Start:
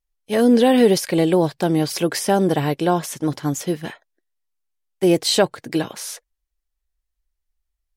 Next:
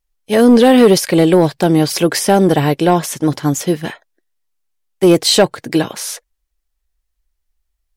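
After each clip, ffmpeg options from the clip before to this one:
ffmpeg -i in.wav -af "aeval=exprs='0.668*(cos(1*acos(clip(val(0)/0.668,-1,1)))-cos(1*PI/2))+0.0168*(cos(7*acos(clip(val(0)/0.668,-1,1)))-cos(7*PI/2))':channel_layout=same,asoftclip=type=tanh:threshold=-10.5dB,volume=8.5dB" out.wav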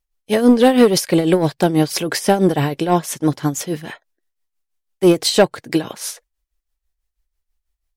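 ffmpeg -i in.wav -af "tremolo=f=6.1:d=0.68,volume=-1dB" out.wav

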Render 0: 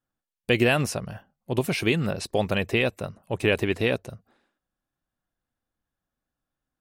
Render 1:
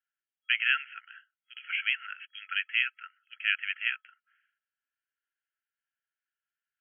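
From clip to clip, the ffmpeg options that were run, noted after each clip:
ffmpeg -i in.wav -af "afftfilt=real='re*between(b*sr/4096,1300,3300)':imag='im*between(b*sr/4096,1300,3300)':win_size=4096:overlap=0.75" out.wav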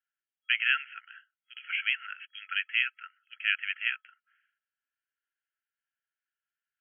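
ffmpeg -i in.wav -af anull out.wav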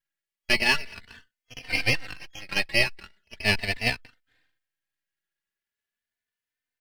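ffmpeg -i in.wav -filter_complex "[0:a]highshelf=frequency=1500:width_type=q:width=3:gain=7,aeval=exprs='max(val(0),0)':channel_layout=same,asplit=2[link_01][link_02];[link_02]adelay=3.2,afreqshift=0.39[link_03];[link_01][link_03]amix=inputs=2:normalize=1,volume=1.5dB" out.wav

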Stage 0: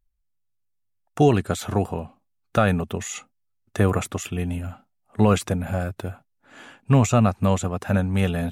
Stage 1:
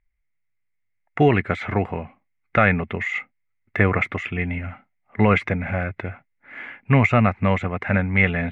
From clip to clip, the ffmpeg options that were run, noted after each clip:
ffmpeg -i in.wav -af "lowpass=frequency=2100:width_type=q:width=12" out.wav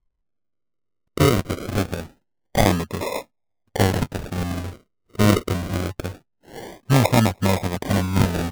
ffmpeg -i in.wav -af "acrusher=samples=41:mix=1:aa=0.000001:lfo=1:lforange=24.6:lforate=0.24" out.wav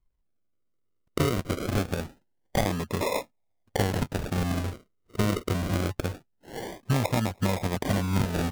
ffmpeg -i in.wav -af "acompressor=threshold=-22dB:ratio=5" out.wav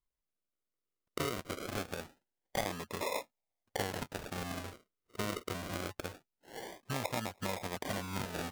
ffmpeg -i in.wav -af "lowshelf=frequency=300:gain=-12,volume=-6dB" out.wav

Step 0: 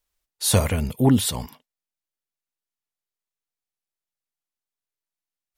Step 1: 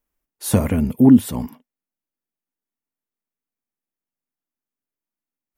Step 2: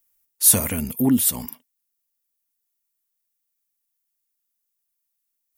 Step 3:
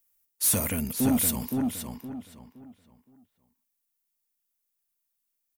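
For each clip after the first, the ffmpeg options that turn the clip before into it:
ffmpeg -i in.wav -filter_complex "[0:a]equalizer=frequency=250:width_type=o:width=1:gain=12,equalizer=frequency=4000:width_type=o:width=1:gain=-10,equalizer=frequency=8000:width_type=o:width=1:gain=-5,asplit=2[link_01][link_02];[link_02]acompressor=threshold=-15dB:ratio=6,volume=-1dB[link_03];[link_01][link_03]amix=inputs=2:normalize=0,volume=-5dB" out.wav
ffmpeg -i in.wav -af "crystalizer=i=9.5:c=0,volume=-8.5dB" out.wav
ffmpeg -i in.wav -filter_complex "[0:a]asoftclip=type=tanh:threshold=-16.5dB,asplit=2[link_01][link_02];[link_02]adelay=517,lowpass=frequency=3600:poles=1,volume=-3.5dB,asplit=2[link_03][link_04];[link_04]adelay=517,lowpass=frequency=3600:poles=1,volume=0.3,asplit=2[link_05][link_06];[link_06]adelay=517,lowpass=frequency=3600:poles=1,volume=0.3,asplit=2[link_07][link_08];[link_08]adelay=517,lowpass=frequency=3600:poles=1,volume=0.3[link_09];[link_03][link_05][link_07][link_09]amix=inputs=4:normalize=0[link_10];[link_01][link_10]amix=inputs=2:normalize=0,volume=-2.5dB" out.wav

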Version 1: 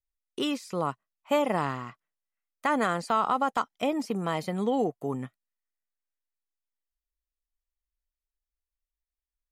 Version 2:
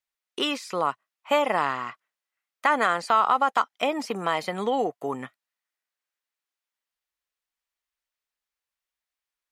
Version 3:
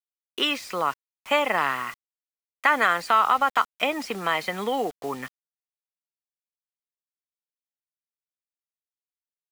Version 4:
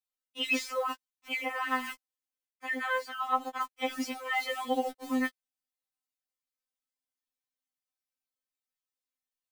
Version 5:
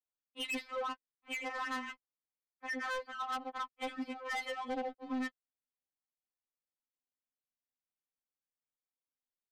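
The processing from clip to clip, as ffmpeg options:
ffmpeg -i in.wav -filter_complex "[0:a]highpass=frequency=1400:poles=1,highshelf=frequency=4300:gain=-12,asplit=2[link_01][link_02];[link_02]acompressor=threshold=-38dB:ratio=6,volume=-2dB[link_03];[link_01][link_03]amix=inputs=2:normalize=0,volume=8.5dB" out.wav
ffmpeg -i in.wav -filter_complex "[0:a]acrossover=split=110|1100|2600[link_01][link_02][link_03][link_04];[link_03]crystalizer=i=9:c=0[link_05];[link_01][link_02][link_05][link_04]amix=inputs=4:normalize=0,acrusher=bits=6:mix=0:aa=0.000001,volume=-1.5dB" out.wav
ffmpeg -i in.wav -af "areverse,acompressor=threshold=-28dB:ratio=20,areverse,afftfilt=real='re*3.46*eq(mod(b,12),0)':imag='im*3.46*eq(mod(b,12),0)':win_size=2048:overlap=0.75,volume=2.5dB" out.wav
ffmpeg -i in.wav -af "aresample=11025,aresample=44100,volume=29.5dB,asoftclip=hard,volume=-29.5dB,adynamicsmooth=sensitivity=7:basefreq=1600,volume=-3.5dB" out.wav

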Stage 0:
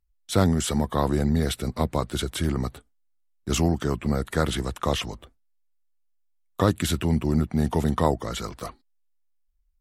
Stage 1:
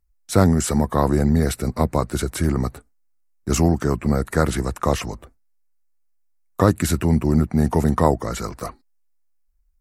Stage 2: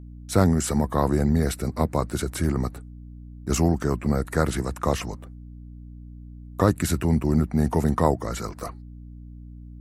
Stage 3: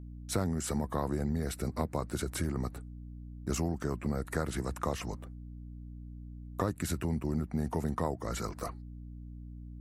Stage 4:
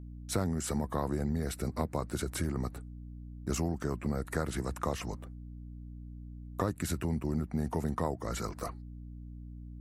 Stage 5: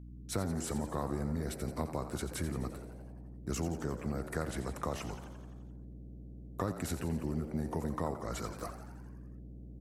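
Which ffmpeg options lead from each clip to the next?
ffmpeg -i in.wav -af "equalizer=frequency=3300:width=2.9:gain=-14,volume=5dB" out.wav
ffmpeg -i in.wav -af "aeval=exprs='val(0)+0.0158*(sin(2*PI*60*n/s)+sin(2*PI*2*60*n/s)/2+sin(2*PI*3*60*n/s)/3+sin(2*PI*4*60*n/s)/4+sin(2*PI*5*60*n/s)/5)':channel_layout=same,volume=-3.5dB" out.wav
ffmpeg -i in.wav -af "acompressor=threshold=-26dB:ratio=3,volume=-4dB" out.wav
ffmpeg -i in.wav -af anull out.wav
ffmpeg -i in.wav -filter_complex "[0:a]asplit=9[link_01][link_02][link_03][link_04][link_05][link_06][link_07][link_08][link_09];[link_02]adelay=86,afreqshift=76,volume=-11.5dB[link_10];[link_03]adelay=172,afreqshift=152,volume=-15.4dB[link_11];[link_04]adelay=258,afreqshift=228,volume=-19.3dB[link_12];[link_05]adelay=344,afreqshift=304,volume=-23.1dB[link_13];[link_06]adelay=430,afreqshift=380,volume=-27dB[link_14];[link_07]adelay=516,afreqshift=456,volume=-30.9dB[link_15];[link_08]adelay=602,afreqshift=532,volume=-34.8dB[link_16];[link_09]adelay=688,afreqshift=608,volume=-38.6dB[link_17];[link_01][link_10][link_11][link_12][link_13][link_14][link_15][link_16][link_17]amix=inputs=9:normalize=0,volume=-3.5dB" out.wav

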